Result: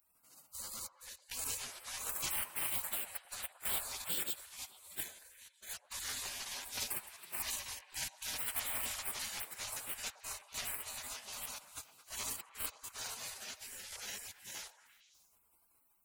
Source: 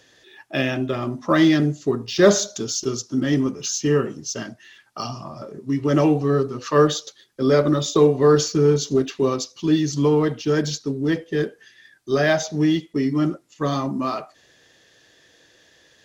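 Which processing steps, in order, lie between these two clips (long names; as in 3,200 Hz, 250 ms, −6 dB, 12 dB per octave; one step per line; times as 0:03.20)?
delay that plays each chunk backwards 358 ms, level 0 dB
gate pattern "xxxxxx.x.xxxxxxx" 104 BPM −60 dB
tilt shelving filter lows −8.5 dB, about 1,300 Hz
phase-vocoder pitch shift with formants kept +2.5 semitones
soft clipping −15.5 dBFS, distortion −13 dB
high-shelf EQ 4,300 Hz +7.5 dB
gate on every frequency bin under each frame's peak −30 dB weak
echo through a band-pass that steps 112 ms, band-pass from 740 Hz, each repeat 0.7 octaves, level −8.5 dB
regular buffer underruns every 0.13 s, samples 512, repeat, from 0:00.64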